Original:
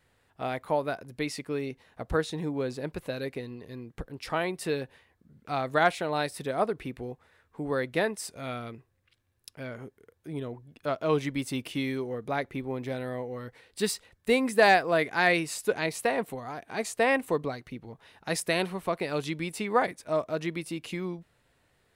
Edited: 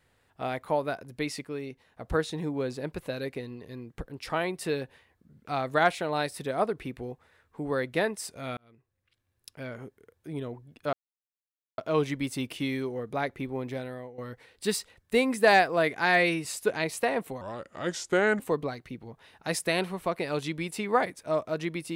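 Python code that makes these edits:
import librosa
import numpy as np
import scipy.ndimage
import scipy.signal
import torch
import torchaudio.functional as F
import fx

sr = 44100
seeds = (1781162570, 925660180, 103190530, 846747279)

y = fx.edit(x, sr, fx.clip_gain(start_s=1.46, length_s=0.57, db=-4.0),
    fx.fade_in_span(start_s=8.57, length_s=0.98),
    fx.insert_silence(at_s=10.93, length_s=0.85),
    fx.fade_out_to(start_s=12.82, length_s=0.51, floor_db=-12.5),
    fx.stretch_span(start_s=15.21, length_s=0.26, factor=1.5),
    fx.speed_span(start_s=16.43, length_s=0.78, speed=0.79), tone=tone)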